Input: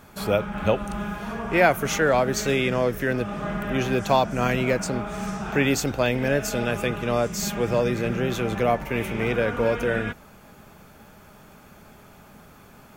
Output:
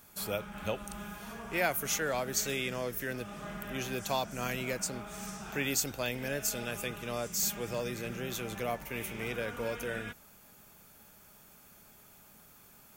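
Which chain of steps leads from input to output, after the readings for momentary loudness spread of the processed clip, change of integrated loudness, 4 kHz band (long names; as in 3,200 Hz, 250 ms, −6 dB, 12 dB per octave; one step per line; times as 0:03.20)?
10 LU, −10.5 dB, −6.0 dB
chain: first-order pre-emphasis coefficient 0.8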